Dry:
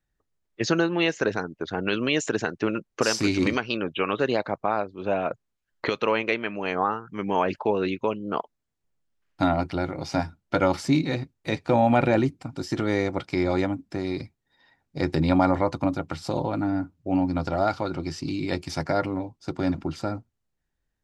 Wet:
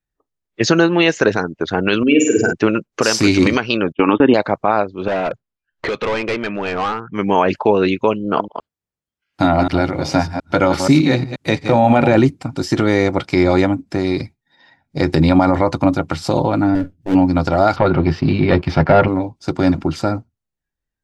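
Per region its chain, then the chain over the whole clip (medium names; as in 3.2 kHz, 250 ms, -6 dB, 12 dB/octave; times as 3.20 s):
2.03–2.53 s: spectral contrast enhancement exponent 2.5 + flutter echo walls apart 8.4 m, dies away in 0.68 s + tape noise reduction on one side only encoder only
3.92–4.34 s: brick-wall FIR low-pass 3.7 kHz + small resonant body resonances 280/880 Hz, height 13 dB, ringing for 30 ms + gate -26 dBFS, range -34 dB
5.08–7.15 s: overload inside the chain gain 26.5 dB + distance through air 110 m
8.24–12.15 s: chunks repeated in reverse 120 ms, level -9 dB + high-pass 48 Hz
16.75–17.15 s: comb filter that takes the minimum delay 0.62 ms + peaking EQ 1.1 kHz -15 dB 0.51 oct
17.76–19.08 s: band-stop 300 Hz, Q 5.8 + waveshaping leveller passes 2 + distance through air 370 m
whole clip: spectral noise reduction 15 dB; loudness maximiser +11.5 dB; trim -1 dB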